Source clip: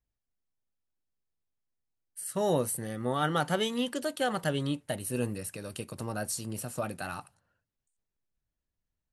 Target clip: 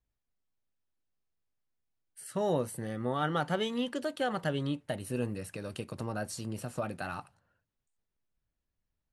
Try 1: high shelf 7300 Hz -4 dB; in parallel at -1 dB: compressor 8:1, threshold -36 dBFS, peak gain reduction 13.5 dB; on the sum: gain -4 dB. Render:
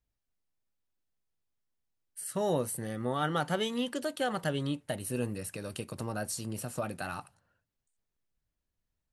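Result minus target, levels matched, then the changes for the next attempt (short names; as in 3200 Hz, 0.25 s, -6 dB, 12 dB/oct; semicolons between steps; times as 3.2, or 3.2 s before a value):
8000 Hz band +6.0 dB
change: high shelf 7300 Hz -15.5 dB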